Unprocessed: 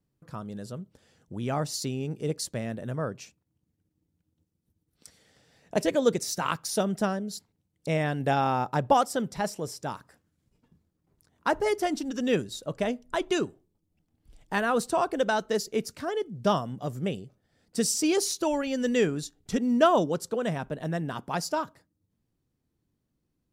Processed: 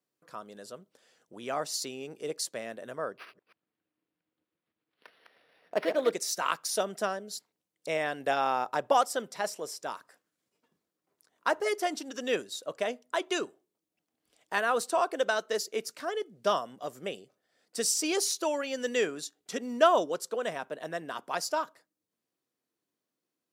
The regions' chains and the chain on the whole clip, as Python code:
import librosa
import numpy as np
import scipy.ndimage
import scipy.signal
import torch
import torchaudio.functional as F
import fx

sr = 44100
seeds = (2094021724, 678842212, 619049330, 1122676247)

y = fx.chain(x, sr, fx.reverse_delay(ms=136, wet_db=-7),
    fx.resample_linear(factor=6), at=(3.12, 6.12))
y = scipy.signal.sosfilt(scipy.signal.butter(2, 470.0, 'highpass', fs=sr, output='sos'), y)
y = fx.notch(y, sr, hz=850.0, q=12.0)